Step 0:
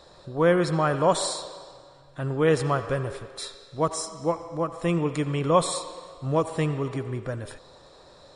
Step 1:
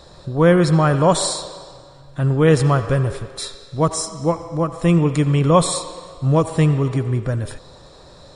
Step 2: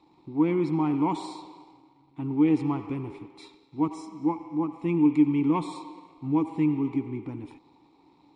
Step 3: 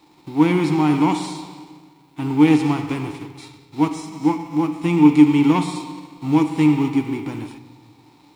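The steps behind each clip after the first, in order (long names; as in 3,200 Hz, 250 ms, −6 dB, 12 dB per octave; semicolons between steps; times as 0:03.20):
bass and treble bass +8 dB, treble +3 dB; level +5 dB
leveller curve on the samples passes 1; formant filter u
spectral envelope flattened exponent 0.6; rectangular room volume 600 cubic metres, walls mixed, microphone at 0.44 metres; level +6.5 dB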